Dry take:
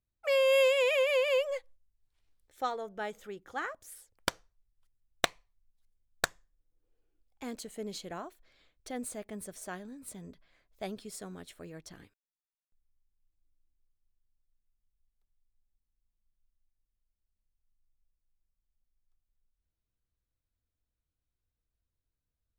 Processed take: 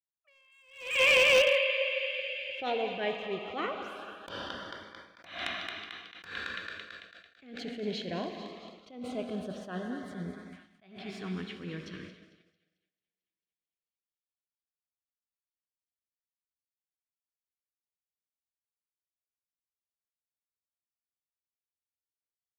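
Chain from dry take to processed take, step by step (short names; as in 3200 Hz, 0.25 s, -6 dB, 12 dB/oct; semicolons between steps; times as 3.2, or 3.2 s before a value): HPF 86 Hz 12 dB/oct; air absorption 260 m; notch 870 Hz, Q 5.5; thinning echo 0.222 s, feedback 83%, high-pass 740 Hz, level -12.5 dB; plate-style reverb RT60 3.2 s, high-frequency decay 0.9×, DRR 6 dB; LFO notch saw up 0.19 Hz 440–3000 Hz; expander -52 dBFS; bell 2800 Hz +8.5 dB 0.9 oct; hard clip -26 dBFS, distortion -13 dB; attack slew limiter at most 110 dB/s; gain +8 dB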